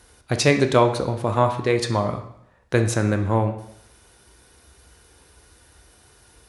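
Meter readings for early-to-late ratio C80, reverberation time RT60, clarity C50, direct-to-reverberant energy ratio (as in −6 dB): 12.5 dB, 0.75 s, 9.5 dB, 6.0 dB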